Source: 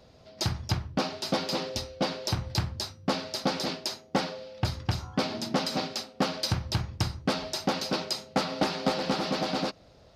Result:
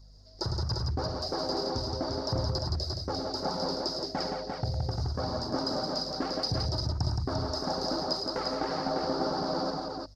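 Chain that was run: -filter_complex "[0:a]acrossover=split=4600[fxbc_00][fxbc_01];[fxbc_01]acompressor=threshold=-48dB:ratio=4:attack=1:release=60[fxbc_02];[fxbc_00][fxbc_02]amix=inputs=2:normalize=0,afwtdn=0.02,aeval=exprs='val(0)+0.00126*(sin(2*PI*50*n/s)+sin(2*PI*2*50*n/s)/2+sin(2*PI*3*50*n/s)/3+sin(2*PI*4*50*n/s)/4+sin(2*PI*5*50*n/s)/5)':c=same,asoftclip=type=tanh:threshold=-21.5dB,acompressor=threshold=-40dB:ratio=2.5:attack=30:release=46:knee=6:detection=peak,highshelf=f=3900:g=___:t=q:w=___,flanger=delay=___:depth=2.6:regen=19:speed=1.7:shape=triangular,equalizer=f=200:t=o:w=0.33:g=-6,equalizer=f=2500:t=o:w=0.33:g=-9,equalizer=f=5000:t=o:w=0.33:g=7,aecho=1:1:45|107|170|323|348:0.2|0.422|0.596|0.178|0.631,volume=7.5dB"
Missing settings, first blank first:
7, 3, 0.8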